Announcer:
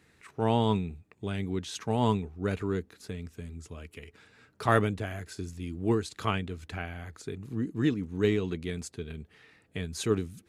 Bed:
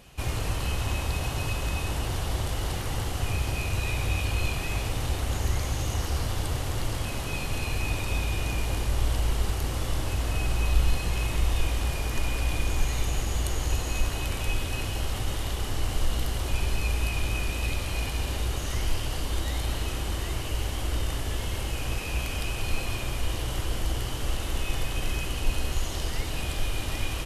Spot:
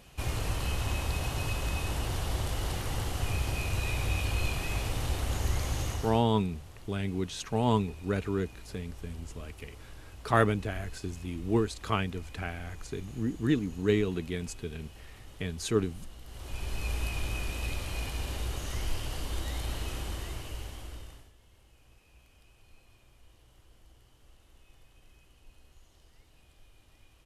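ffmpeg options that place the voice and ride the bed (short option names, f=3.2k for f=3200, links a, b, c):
-filter_complex "[0:a]adelay=5650,volume=0dB[a];[1:a]volume=12dB,afade=t=out:st=5.81:d=0.43:silence=0.133352,afade=t=in:st=16.24:d=0.69:silence=0.177828,afade=t=out:st=19.98:d=1.34:silence=0.0562341[b];[a][b]amix=inputs=2:normalize=0"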